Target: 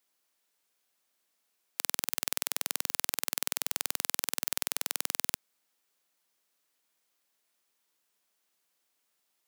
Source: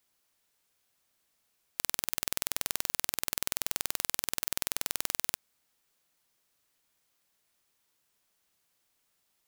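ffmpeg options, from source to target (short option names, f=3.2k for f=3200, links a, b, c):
-filter_complex "[0:a]highpass=220,asplit=2[a][b];[b]acrusher=bits=3:mix=0:aa=0.000001,volume=-9dB[c];[a][c]amix=inputs=2:normalize=0,volume=-2dB"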